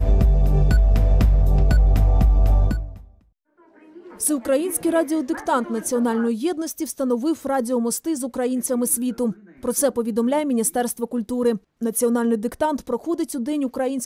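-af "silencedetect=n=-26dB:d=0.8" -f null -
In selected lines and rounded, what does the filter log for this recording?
silence_start: 2.85
silence_end: 4.21 | silence_duration: 1.36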